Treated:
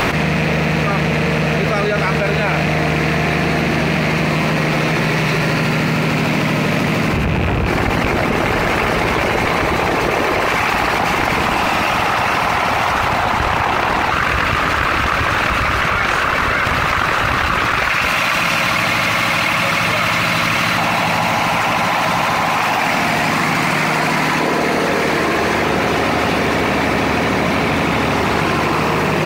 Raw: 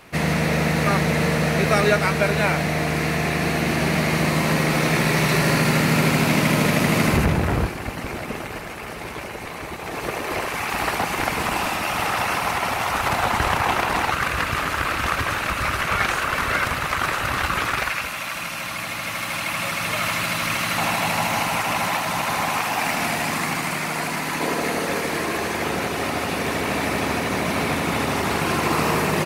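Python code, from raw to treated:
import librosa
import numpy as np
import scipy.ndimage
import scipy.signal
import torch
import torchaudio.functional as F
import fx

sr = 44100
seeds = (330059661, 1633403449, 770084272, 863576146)

p1 = fx.rattle_buzz(x, sr, strikes_db=-23.0, level_db=-16.0)
p2 = 10.0 ** (-17.0 / 20.0) * np.tanh(p1 / 10.0 ** (-17.0 / 20.0))
p3 = p1 + (p2 * 10.0 ** (-6.0 / 20.0))
p4 = fx.peak_eq(p3, sr, hz=11000.0, db=-13.0, octaves=1.1)
p5 = fx.env_flatten(p4, sr, amount_pct=100)
y = p5 * 10.0 ** (-3.5 / 20.0)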